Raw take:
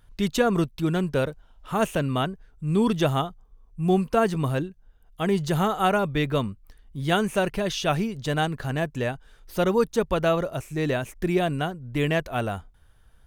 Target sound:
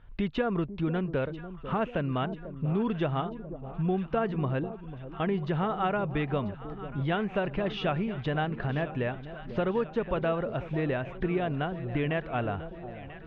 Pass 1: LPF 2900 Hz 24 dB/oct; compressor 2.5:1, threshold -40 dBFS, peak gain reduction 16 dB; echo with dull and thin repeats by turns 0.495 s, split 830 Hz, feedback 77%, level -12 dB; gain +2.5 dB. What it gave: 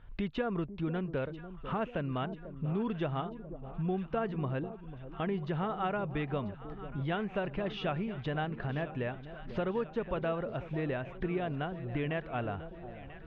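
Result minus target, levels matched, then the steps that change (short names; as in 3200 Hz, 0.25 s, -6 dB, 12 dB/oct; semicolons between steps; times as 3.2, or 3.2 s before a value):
compressor: peak gain reduction +5 dB
change: compressor 2.5:1, threshold -32 dBFS, peak gain reduction 11 dB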